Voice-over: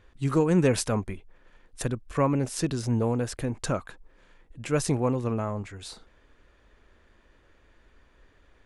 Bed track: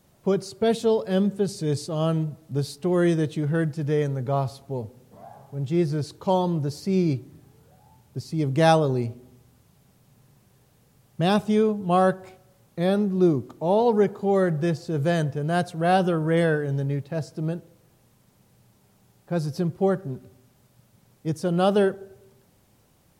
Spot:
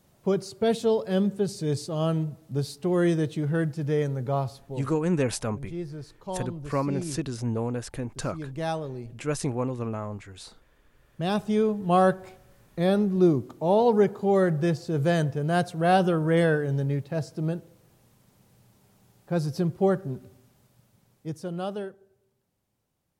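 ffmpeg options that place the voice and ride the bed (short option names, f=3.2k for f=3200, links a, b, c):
-filter_complex "[0:a]adelay=4550,volume=-3dB[a];[1:a]volume=9.5dB,afade=t=out:st=4.3:d=0.89:silence=0.316228,afade=t=in:st=10.9:d=1.03:silence=0.266073,afade=t=out:st=20.27:d=1.65:silence=0.149624[b];[a][b]amix=inputs=2:normalize=0"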